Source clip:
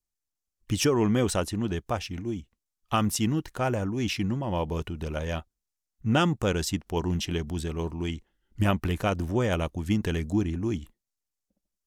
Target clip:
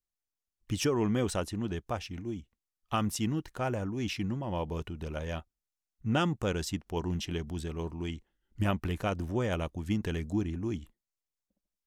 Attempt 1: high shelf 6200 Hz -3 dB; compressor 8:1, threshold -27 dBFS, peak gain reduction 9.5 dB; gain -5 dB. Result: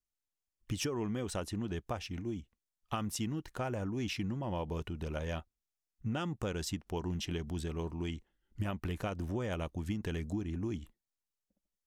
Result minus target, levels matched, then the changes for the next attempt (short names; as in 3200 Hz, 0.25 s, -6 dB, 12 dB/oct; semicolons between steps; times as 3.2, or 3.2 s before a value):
compressor: peak gain reduction +9.5 dB
remove: compressor 8:1, threshold -27 dBFS, peak gain reduction 9.5 dB